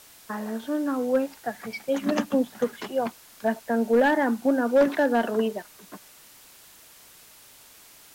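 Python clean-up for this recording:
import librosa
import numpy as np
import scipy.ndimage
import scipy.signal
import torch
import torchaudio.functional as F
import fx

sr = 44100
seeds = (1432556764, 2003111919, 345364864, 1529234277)

y = fx.fix_declip(x, sr, threshold_db=-13.5)
y = fx.noise_reduce(y, sr, print_start_s=7.25, print_end_s=7.75, reduce_db=18.0)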